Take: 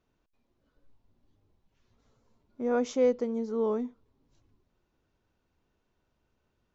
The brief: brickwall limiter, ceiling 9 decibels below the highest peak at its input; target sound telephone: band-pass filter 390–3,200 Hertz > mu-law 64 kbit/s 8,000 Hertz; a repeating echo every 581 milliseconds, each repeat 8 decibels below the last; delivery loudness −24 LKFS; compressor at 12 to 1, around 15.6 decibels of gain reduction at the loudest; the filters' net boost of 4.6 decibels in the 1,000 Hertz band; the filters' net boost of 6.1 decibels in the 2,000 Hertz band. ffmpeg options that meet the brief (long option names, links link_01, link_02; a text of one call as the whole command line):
ffmpeg -i in.wav -af "equalizer=frequency=1000:width_type=o:gain=5,equalizer=frequency=2000:width_type=o:gain=7,acompressor=threshold=-34dB:ratio=12,alimiter=level_in=12.5dB:limit=-24dB:level=0:latency=1,volume=-12.5dB,highpass=390,lowpass=3200,aecho=1:1:581|1162|1743|2324|2905:0.398|0.159|0.0637|0.0255|0.0102,volume=25.5dB" -ar 8000 -c:a pcm_mulaw out.wav